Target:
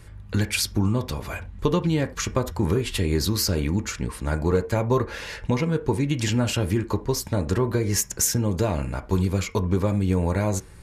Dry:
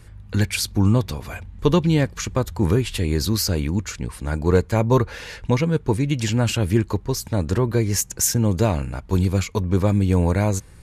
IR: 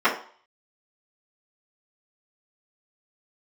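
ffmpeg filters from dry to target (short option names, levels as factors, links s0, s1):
-filter_complex "[0:a]acompressor=threshold=0.126:ratio=6,asplit=2[s0][s1];[1:a]atrim=start_sample=2205,atrim=end_sample=4410[s2];[s1][s2]afir=irnorm=-1:irlink=0,volume=0.0596[s3];[s0][s3]amix=inputs=2:normalize=0"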